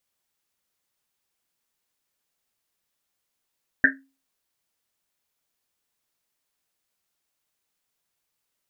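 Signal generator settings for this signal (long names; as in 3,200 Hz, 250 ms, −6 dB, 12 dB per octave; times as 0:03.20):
drum after Risset, pitch 270 Hz, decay 0.34 s, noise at 1,700 Hz, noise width 360 Hz, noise 70%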